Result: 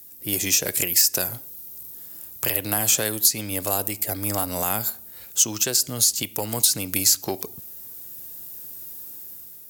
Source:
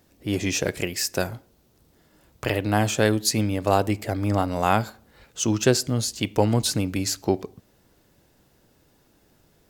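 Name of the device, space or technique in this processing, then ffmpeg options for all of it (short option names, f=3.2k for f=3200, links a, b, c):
FM broadcast chain: -filter_complex "[0:a]highpass=66,dynaudnorm=f=190:g=7:m=7dB,acrossover=split=470|7100[a][b][c];[a]acompressor=threshold=-25dB:ratio=4[d];[b]acompressor=threshold=-20dB:ratio=4[e];[c]acompressor=threshold=-40dB:ratio=4[f];[d][e][f]amix=inputs=3:normalize=0,aemphasis=mode=production:type=50fm,alimiter=limit=-10.5dB:level=0:latency=1:release=288,asoftclip=type=hard:threshold=-13dB,lowpass=f=15k:w=0.5412,lowpass=f=15k:w=1.3066,aemphasis=mode=production:type=50fm,volume=-3dB"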